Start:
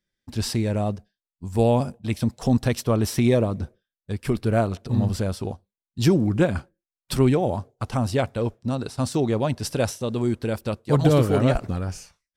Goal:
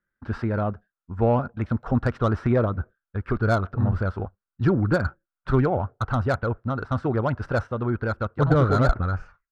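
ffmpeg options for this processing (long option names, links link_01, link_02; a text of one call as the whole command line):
ffmpeg -i in.wav -filter_complex "[0:a]atempo=1.3,asubboost=boost=2.5:cutoff=110,lowpass=frequency=1400:width_type=q:width=6.6,acrossover=split=840[link_01][link_02];[link_02]asoftclip=type=tanh:threshold=-23.5dB[link_03];[link_01][link_03]amix=inputs=2:normalize=0,volume=-1.5dB" out.wav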